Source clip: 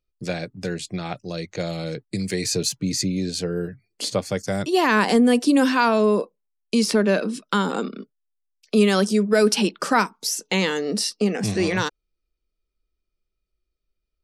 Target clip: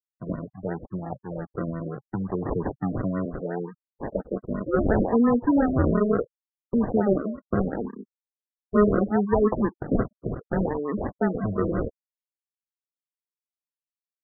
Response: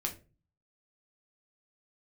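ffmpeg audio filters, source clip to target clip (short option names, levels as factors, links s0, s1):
-filter_complex "[0:a]asettb=1/sr,asplit=3[s0][s1][s2];[s0]atrim=end=3.254[s3];[s1]atrim=start=3.25:end=5.86,asetpts=PTS-STARTPTS,afade=t=in:d=0.004:c=qsin,afade=t=out:st=2.606:d=0.004:c=qsin,highpass=f=180:w=0.5412,highpass=f=180:w=1.3066[s4];[s2]atrim=start=5.856[s5];[s3][s4]acrossfade=d=0.004:c1=hsin:c2=qsin[s6];[s6][s5]acrossfade=d=0.004:c1=qsin:c2=hsin,afftfilt=real='re*gte(hypot(re,im),0.0355)':imag='im*gte(hypot(re,im),0.0355)':win_size=1024:overlap=0.75,acrusher=samples=41:mix=1:aa=0.000001:lfo=1:lforange=24.6:lforate=0.71,afftfilt=real='re*lt(b*sr/1024,610*pow(2000/610,0.5+0.5*sin(2*PI*5.7*pts/sr)))':imag='im*lt(b*sr/1024,610*pow(2000/610,0.5+0.5*sin(2*PI*5.7*pts/sr)))':win_size=1024:overlap=0.75,volume=0.75"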